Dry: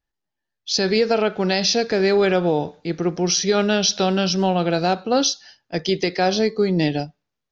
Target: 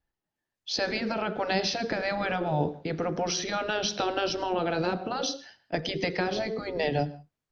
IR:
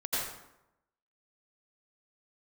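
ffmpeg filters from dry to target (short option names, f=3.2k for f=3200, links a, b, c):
-filter_complex "[0:a]aemphasis=mode=reproduction:type=75fm,acrossover=split=400[a][b];[b]acompressor=threshold=-23dB:ratio=5[c];[a][c]amix=inputs=2:normalize=0,asplit=2[d][e];[1:a]atrim=start_sample=2205,afade=t=out:st=0.25:d=0.01,atrim=end_sample=11466,highshelf=f=2.4k:g=2[f];[e][f]afir=irnorm=-1:irlink=0,volume=-24dB[g];[d][g]amix=inputs=2:normalize=0,afftfilt=real='re*lt(hypot(re,im),0.501)':imag='im*lt(hypot(re,im),0.501)':win_size=1024:overlap=0.75" -ar 48000 -c:a libopus -b:a 48k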